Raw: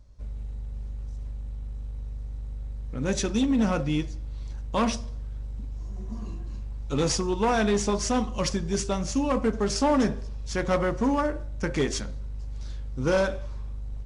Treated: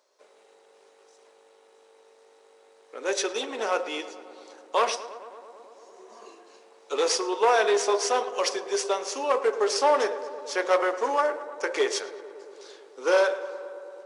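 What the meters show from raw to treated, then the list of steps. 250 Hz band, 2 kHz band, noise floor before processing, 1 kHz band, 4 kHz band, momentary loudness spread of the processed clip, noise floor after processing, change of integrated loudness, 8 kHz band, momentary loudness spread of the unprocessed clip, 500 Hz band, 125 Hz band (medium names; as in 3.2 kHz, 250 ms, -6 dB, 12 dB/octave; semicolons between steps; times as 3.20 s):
-13.0 dB, +4.0 dB, -35 dBFS, +4.0 dB, +3.0 dB, 18 LU, -58 dBFS, +2.5 dB, +1.0 dB, 14 LU, +3.5 dB, under -35 dB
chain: elliptic high-pass 400 Hz, stop band 70 dB; dynamic bell 7.1 kHz, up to -5 dB, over -51 dBFS, Q 3.9; on a send: filtered feedback delay 111 ms, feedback 83%, low-pass 2.5 kHz, level -15 dB; on the sum: trim +4 dB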